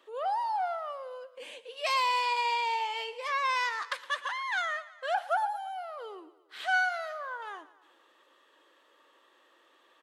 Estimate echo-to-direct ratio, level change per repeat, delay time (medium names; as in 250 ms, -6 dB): -17.0 dB, -5.0 dB, 115 ms